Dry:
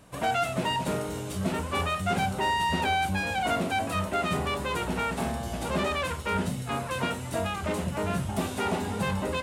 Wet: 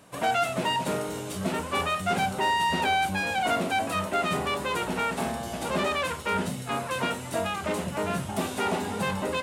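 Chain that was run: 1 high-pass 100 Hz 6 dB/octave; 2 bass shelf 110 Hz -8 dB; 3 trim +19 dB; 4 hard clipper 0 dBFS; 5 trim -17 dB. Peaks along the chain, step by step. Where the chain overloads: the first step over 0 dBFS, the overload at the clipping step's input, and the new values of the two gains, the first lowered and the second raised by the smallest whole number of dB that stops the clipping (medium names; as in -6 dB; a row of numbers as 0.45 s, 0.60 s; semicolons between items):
-15.0 dBFS, -15.5 dBFS, +3.5 dBFS, 0.0 dBFS, -17.0 dBFS; step 3, 3.5 dB; step 3 +15 dB, step 5 -13 dB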